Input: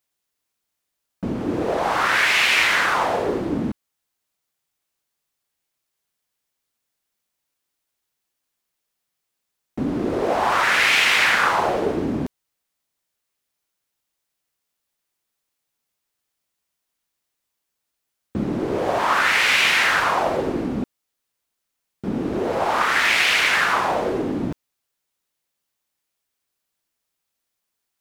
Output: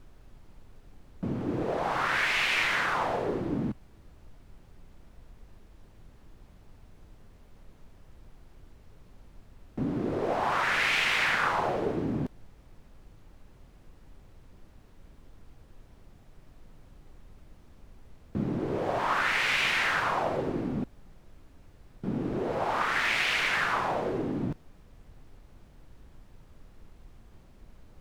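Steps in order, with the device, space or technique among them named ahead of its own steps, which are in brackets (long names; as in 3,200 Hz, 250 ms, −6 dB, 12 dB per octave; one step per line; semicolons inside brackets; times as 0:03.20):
car interior (parametric band 130 Hz +7 dB 0.79 octaves; high-shelf EQ 4,700 Hz −6.5 dB; brown noise bed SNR 17 dB)
level −8 dB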